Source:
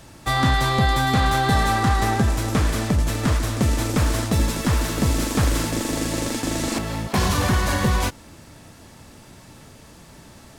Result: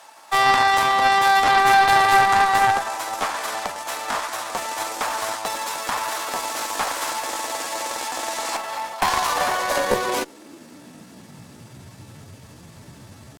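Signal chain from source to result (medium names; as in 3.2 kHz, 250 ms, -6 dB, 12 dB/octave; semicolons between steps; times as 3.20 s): high-pass sweep 830 Hz -> 98 Hz, 7.30–9.42 s; Chebyshev shaper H 4 -8 dB, 6 -16 dB, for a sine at -6 dBFS; tempo 0.79×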